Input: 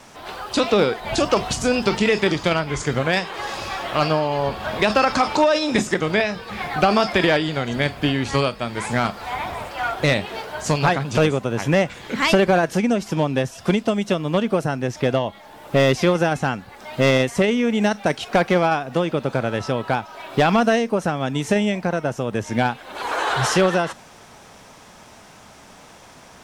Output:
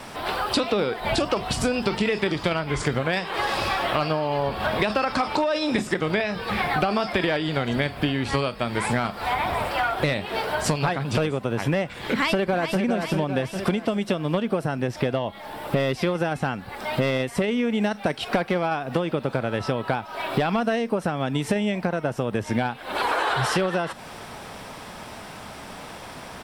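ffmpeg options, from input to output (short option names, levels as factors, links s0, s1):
-filter_complex "[0:a]asplit=2[s0][s1];[s1]afade=t=in:st=12.09:d=0.01,afade=t=out:st=12.79:d=0.01,aecho=0:1:400|800|1200|1600|2000|2400:0.398107|0.199054|0.0995268|0.0497634|0.0248817|0.0124408[s2];[s0][s2]amix=inputs=2:normalize=0,equalizer=f=6500:t=o:w=0.36:g=-10.5,acompressor=threshold=0.0398:ratio=6,volume=2.24"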